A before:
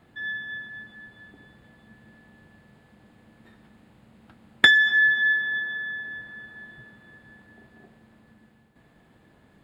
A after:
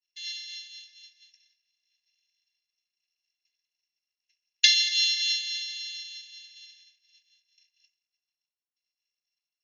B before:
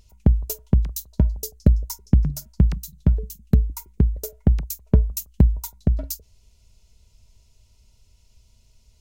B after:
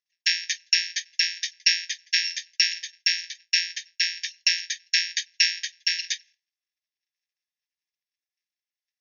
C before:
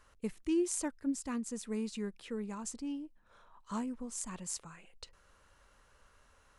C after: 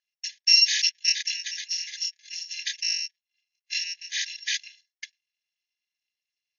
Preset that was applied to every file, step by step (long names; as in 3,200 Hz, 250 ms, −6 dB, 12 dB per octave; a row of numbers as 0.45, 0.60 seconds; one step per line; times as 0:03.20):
samples in bit-reversed order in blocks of 256 samples
linear-phase brick-wall band-pass 1,600–6,800 Hz
downward expander −51 dBFS
loudness normalisation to −24 LKFS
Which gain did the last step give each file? +1.5, +8.0, +18.5 decibels